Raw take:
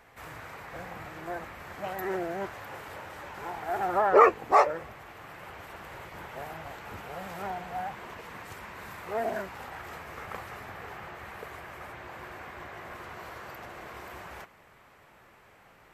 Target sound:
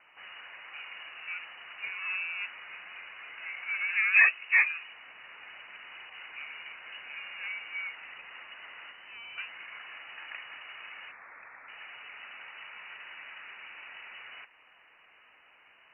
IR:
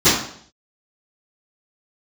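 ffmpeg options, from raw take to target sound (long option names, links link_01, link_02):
-filter_complex "[0:a]asettb=1/sr,asplit=3[link_01][link_02][link_03];[link_01]atrim=end=11.114[link_04];[link_02]atrim=start=11.11:end=11.68,asetpts=PTS-STARTPTS,afade=type=in:duration=0.004:curve=qsin,afade=type=out:start_time=0.566:duration=0.004:curve=qsin,highpass=960[link_05];[link_03]atrim=start=11.676[link_06];[link_04][link_05]acrossfade=duration=0.004:curve1=hsin:curve2=qsin[link_07];[link_07][link_06]acrossfade=duration=0.004:curve1=qsin:curve2=hsin,acrossover=split=2000[link_08][link_09];[link_09]acompressor=threshold=-58dB:ratio=6[link_10];[link_08][link_10]amix=inputs=2:normalize=0,asettb=1/sr,asplit=3[link_11][link_12][link_13];[link_11]atrim=end=8.914[link_14];[link_12]atrim=start=8.91:end=9.38,asetpts=PTS-STARTPTS,afade=type=in:duration=0.004:curve=qsin,afade=type=out:start_time=0.466:duration=0.004:curve=qsin,aeval=exprs='(tanh(141*val(0)+0.7)-tanh(0.7))/141':channel_layout=same[link_15];[link_13]atrim=start=9.376[link_16];[link_14][link_15]acrossfade=duration=0.004:curve1=hsin:curve2=qsin[link_17];[link_17][link_16]acrossfade=duration=0.004:curve1=qsin:curve2=hsin,lowpass=frequency=2600:width_type=q:width=0.5098,lowpass=frequency=2600:width_type=q:width=0.6013,lowpass=frequency=2600:width_type=q:width=0.9,lowpass=frequency=2600:width_type=q:width=2.563,afreqshift=-3000,volume=-2.5dB"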